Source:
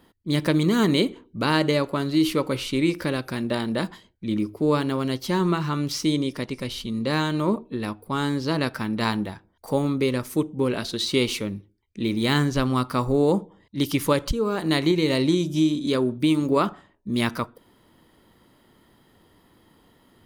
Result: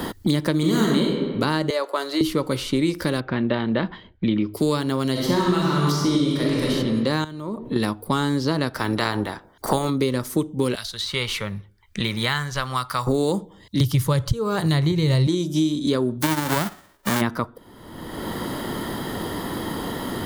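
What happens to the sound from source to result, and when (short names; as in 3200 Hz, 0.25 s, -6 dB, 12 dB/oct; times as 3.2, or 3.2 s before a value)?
0.57–1.11 reverb throw, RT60 1.1 s, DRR -2.5 dB
1.7–2.21 HPF 450 Hz 24 dB/oct
3.2–4.54 LPF 2900 Hz 24 dB/oct
5.11–6.71 reverb throw, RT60 1.6 s, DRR -4.5 dB
7.24–7.76 compressor 3:1, threshold -40 dBFS
8.75–9.89 spectral limiter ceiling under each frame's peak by 15 dB
10.75–13.07 passive tone stack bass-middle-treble 10-0-10
13.8–15.27 resonant low shelf 170 Hz +13.5 dB, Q 3
16.21–17.2 spectral whitening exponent 0.1
whole clip: bell 2500 Hz -7 dB 0.41 oct; three-band squash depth 100%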